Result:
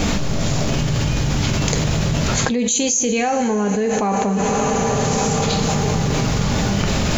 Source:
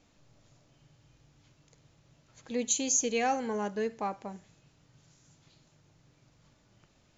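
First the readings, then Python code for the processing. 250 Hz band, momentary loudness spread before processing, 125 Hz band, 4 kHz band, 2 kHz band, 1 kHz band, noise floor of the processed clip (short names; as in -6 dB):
+20.0 dB, 11 LU, +35.0 dB, +20.0 dB, +17.5 dB, +15.5 dB, -20 dBFS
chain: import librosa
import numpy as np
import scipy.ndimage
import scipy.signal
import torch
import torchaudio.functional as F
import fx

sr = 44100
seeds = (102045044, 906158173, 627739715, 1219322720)

y = fx.low_shelf(x, sr, hz=260.0, db=4.5)
y = fx.rev_double_slope(y, sr, seeds[0], early_s=0.26, late_s=4.6, knee_db=-19, drr_db=5.5)
y = fx.env_flatten(y, sr, amount_pct=100)
y = y * 10.0 ** (5.5 / 20.0)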